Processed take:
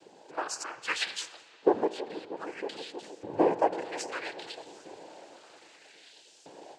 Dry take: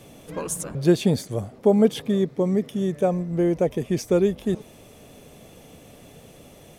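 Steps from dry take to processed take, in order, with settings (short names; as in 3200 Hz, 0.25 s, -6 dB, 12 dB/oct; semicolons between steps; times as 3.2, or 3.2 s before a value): LFO high-pass saw up 0.62 Hz 370–5400 Hz; dark delay 0.318 s, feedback 65%, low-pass 1600 Hz, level -16 dB; noise vocoder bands 8; AGC gain up to 6.5 dB; on a send at -14 dB: reverb RT60 3.5 s, pre-delay 15 ms; on the sum: dynamic EQ 1600 Hz, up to +4 dB, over -37 dBFS, Q 0.7; gain -9 dB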